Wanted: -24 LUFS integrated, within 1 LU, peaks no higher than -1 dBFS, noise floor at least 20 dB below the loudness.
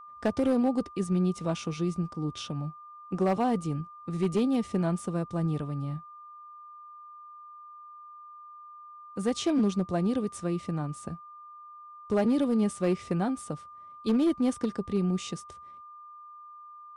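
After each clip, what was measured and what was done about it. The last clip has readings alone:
clipped samples 0.8%; clipping level -19.5 dBFS; steady tone 1.2 kHz; tone level -45 dBFS; loudness -29.5 LUFS; peak level -19.5 dBFS; loudness target -24.0 LUFS
-> clip repair -19.5 dBFS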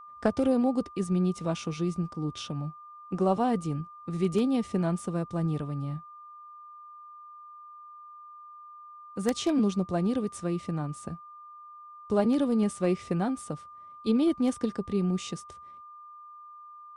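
clipped samples 0.0%; steady tone 1.2 kHz; tone level -45 dBFS
-> band-stop 1.2 kHz, Q 30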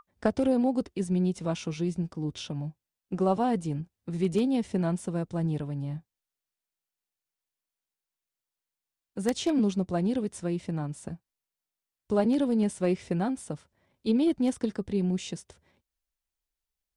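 steady tone not found; loudness -29.0 LUFS; peak level -10.5 dBFS; loudness target -24.0 LUFS
-> trim +5 dB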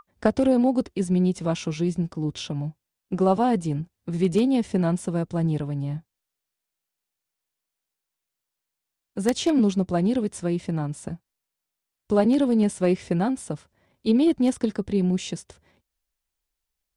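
loudness -24.0 LUFS; peak level -5.5 dBFS; noise floor -85 dBFS

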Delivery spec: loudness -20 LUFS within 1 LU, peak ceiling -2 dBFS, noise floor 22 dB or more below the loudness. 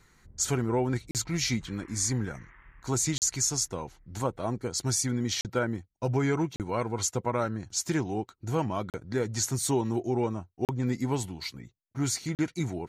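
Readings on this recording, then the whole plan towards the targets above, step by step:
dropouts 7; longest dropout 38 ms; loudness -30.0 LUFS; peak level -14.5 dBFS; loudness target -20.0 LUFS
-> interpolate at 1.11/3.18/5.41/6.56/8.90/10.65/12.35 s, 38 ms; trim +10 dB

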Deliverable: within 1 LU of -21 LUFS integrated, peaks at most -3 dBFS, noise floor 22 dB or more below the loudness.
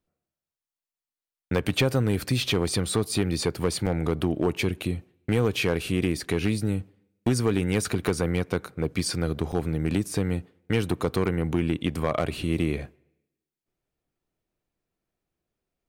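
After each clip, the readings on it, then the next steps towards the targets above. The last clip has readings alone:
clipped samples 0.5%; clipping level -14.5 dBFS; dropouts 2; longest dropout 6.9 ms; loudness -27.0 LUFS; peak level -14.5 dBFS; loudness target -21.0 LUFS
-> clip repair -14.5 dBFS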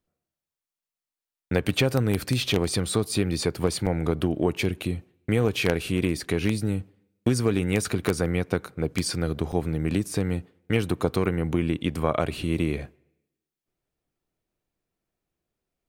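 clipped samples 0.0%; dropouts 2; longest dropout 6.9 ms
-> interpolate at 3.86/9.52 s, 6.9 ms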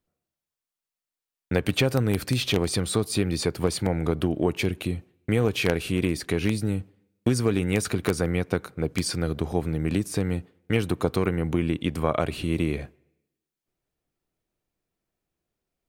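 dropouts 0; loudness -26.5 LUFS; peak level -5.5 dBFS; loudness target -21.0 LUFS
-> trim +5.5 dB; peak limiter -3 dBFS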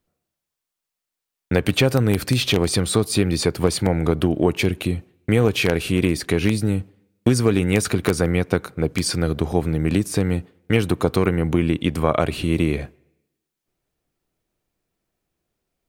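loudness -21.0 LUFS; peak level -3.0 dBFS; noise floor -84 dBFS

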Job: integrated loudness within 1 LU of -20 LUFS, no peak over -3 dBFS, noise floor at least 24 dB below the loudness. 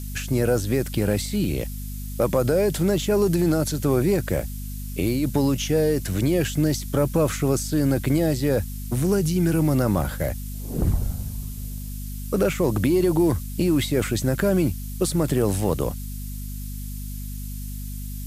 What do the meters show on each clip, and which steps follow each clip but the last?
hum 50 Hz; highest harmonic 250 Hz; hum level -30 dBFS; noise floor -32 dBFS; noise floor target -47 dBFS; loudness -23.0 LUFS; peak level -9.0 dBFS; loudness target -20.0 LUFS
-> hum notches 50/100/150/200/250 Hz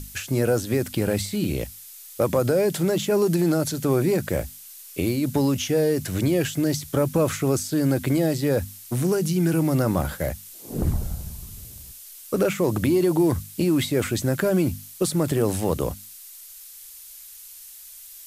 hum not found; noise floor -43 dBFS; noise floor target -48 dBFS
-> noise reduction 6 dB, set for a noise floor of -43 dBFS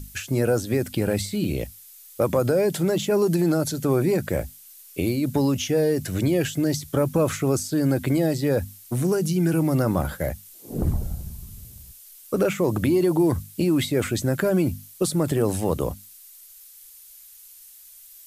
noise floor -48 dBFS; loudness -23.5 LUFS; peak level -10.0 dBFS; loudness target -20.0 LUFS
-> trim +3.5 dB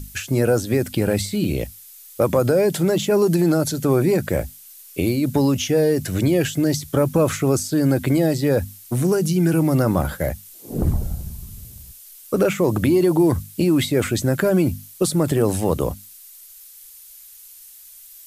loudness -20.0 LUFS; peak level -6.5 dBFS; noise floor -44 dBFS

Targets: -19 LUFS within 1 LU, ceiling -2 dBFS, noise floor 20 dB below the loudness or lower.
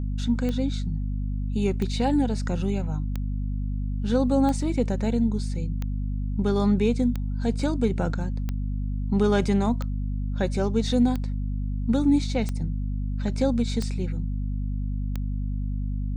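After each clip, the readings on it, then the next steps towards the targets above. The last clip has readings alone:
clicks found 12; hum 50 Hz; highest harmonic 250 Hz; hum level -25 dBFS; loudness -26.5 LUFS; peak level -10.0 dBFS; loudness target -19.0 LUFS
-> de-click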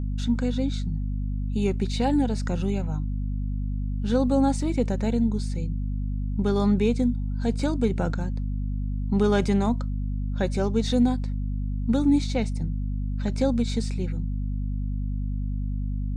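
clicks found 0; hum 50 Hz; highest harmonic 250 Hz; hum level -25 dBFS
-> de-hum 50 Hz, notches 5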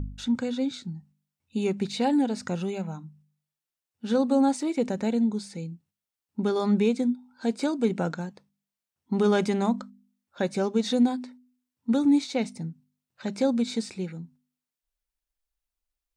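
hum not found; loudness -27.0 LUFS; peak level -12.0 dBFS; loudness target -19.0 LUFS
-> trim +8 dB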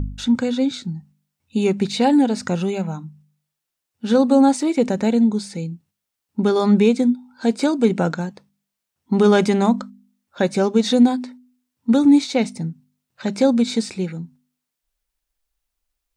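loudness -19.0 LUFS; peak level -4.0 dBFS; noise floor -82 dBFS

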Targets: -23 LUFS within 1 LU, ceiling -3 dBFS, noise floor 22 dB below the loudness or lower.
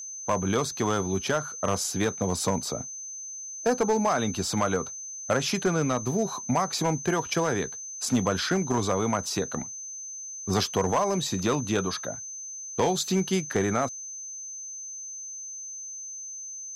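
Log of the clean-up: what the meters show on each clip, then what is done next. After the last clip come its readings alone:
clipped samples 0.6%; clipping level -17.0 dBFS; steady tone 6.2 kHz; tone level -36 dBFS; loudness -28.0 LUFS; peak level -17.0 dBFS; loudness target -23.0 LUFS
-> clip repair -17 dBFS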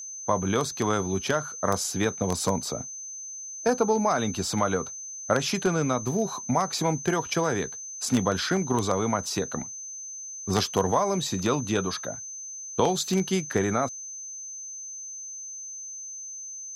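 clipped samples 0.0%; steady tone 6.2 kHz; tone level -36 dBFS
-> band-stop 6.2 kHz, Q 30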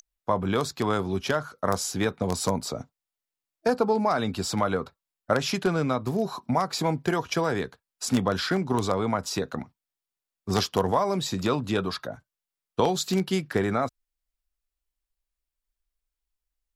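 steady tone not found; loudness -27.0 LUFS; peak level -8.0 dBFS; loudness target -23.0 LUFS
-> trim +4 dB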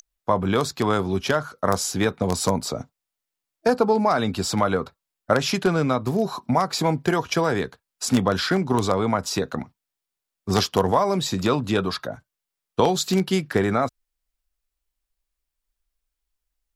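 loudness -23.0 LUFS; peak level -4.0 dBFS; noise floor -85 dBFS

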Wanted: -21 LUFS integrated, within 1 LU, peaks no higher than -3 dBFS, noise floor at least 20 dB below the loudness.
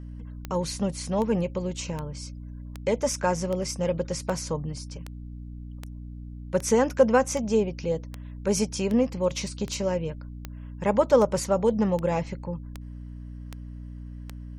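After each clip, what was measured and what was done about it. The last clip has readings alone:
clicks found 19; hum 60 Hz; highest harmonic 300 Hz; hum level -37 dBFS; loudness -26.5 LUFS; peak level -6.5 dBFS; loudness target -21.0 LUFS
-> de-click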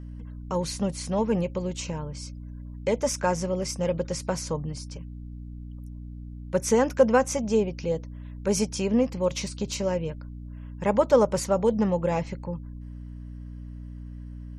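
clicks found 0; hum 60 Hz; highest harmonic 300 Hz; hum level -37 dBFS
-> hum notches 60/120/180/240/300 Hz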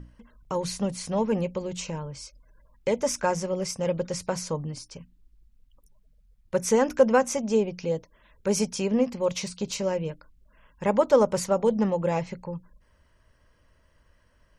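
hum not found; loudness -26.5 LUFS; peak level -7.0 dBFS; loudness target -21.0 LUFS
-> trim +5.5 dB; peak limiter -3 dBFS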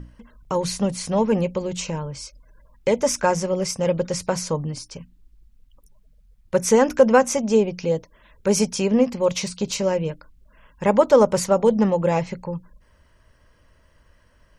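loudness -21.5 LUFS; peak level -3.0 dBFS; noise floor -58 dBFS

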